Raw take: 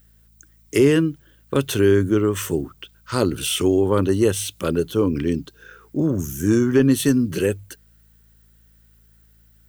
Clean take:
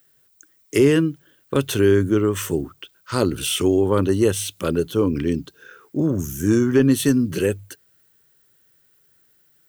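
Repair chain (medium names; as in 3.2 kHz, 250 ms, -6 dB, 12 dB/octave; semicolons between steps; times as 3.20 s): de-hum 55.3 Hz, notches 4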